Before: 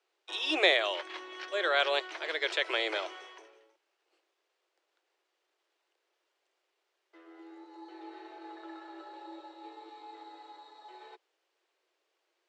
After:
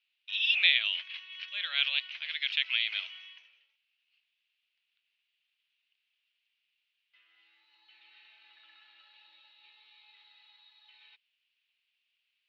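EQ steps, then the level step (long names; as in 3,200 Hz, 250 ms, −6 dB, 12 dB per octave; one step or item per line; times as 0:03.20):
four-pole ladder band-pass 3,000 Hz, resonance 60%
high-frequency loss of the air 140 metres
parametric band 3,900 Hz +6.5 dB 1.5 octaves
+8.0 dB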